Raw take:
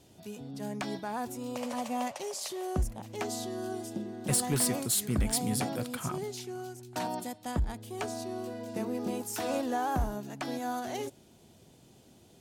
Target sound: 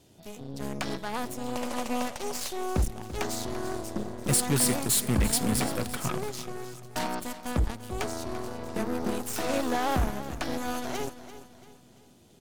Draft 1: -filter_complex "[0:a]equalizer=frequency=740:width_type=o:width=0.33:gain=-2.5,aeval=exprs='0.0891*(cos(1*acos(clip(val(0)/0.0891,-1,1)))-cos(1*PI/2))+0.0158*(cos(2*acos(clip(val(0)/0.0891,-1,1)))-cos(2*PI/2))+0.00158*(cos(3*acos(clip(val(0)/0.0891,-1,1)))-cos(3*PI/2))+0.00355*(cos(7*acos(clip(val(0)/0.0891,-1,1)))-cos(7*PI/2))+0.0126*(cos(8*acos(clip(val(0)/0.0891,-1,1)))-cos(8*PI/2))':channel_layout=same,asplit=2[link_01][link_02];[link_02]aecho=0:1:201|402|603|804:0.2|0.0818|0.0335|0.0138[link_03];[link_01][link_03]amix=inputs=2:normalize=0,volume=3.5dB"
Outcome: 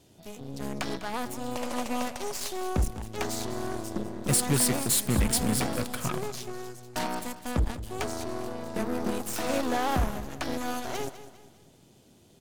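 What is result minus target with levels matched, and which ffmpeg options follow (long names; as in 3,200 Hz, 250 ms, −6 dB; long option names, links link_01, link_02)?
echo 139 ms early
-filter_complex "[0:a]equalizer=frequency=740:width_type=o:width=0.33:gain=-2.5,aeval=exprs='0.0891*(cos(1*acos(clip(val(0)/0.0891,-1,1)))-cos(1*PI/2))+0.0158*(cos(2*acos(clip(val(0)/0.0891,-1,1)))-cos(2*PI/2))+0.00158*(cos(3*acos(clip(val(0)/0.0891,-1,1)))-cos(3*PI/2))+0.00355*(cos(7*acos(clip(val(0)/0.0891,-1,1)))-cos(7*PI/2))+0.0126*(cos(8*acos(clip(val(0)/0.0891,-1,1)))-cos(8*PI/2))':channel_layout=same,asplit=2[link_01][link_02];[link_02]aecho=0:1:340|680|1020|1360:0.2|0.0818|0.0335|0.0138[link_03];[link_01][link_03]amix=inputs=2:normalize=0,volume=3.5dB"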